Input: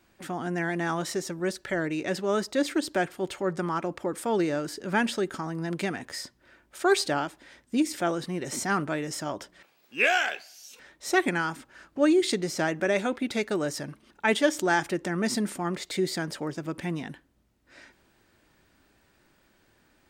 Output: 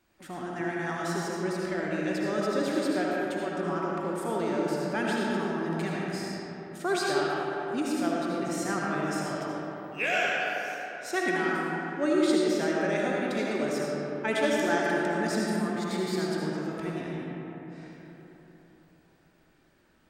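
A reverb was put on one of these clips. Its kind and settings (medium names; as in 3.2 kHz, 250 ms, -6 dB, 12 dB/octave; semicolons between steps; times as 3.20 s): algorithmic reverb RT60 3.9 s, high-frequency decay 0.4×, pre-delay 35 ms, DRR -4.5 dB; trim -7 dB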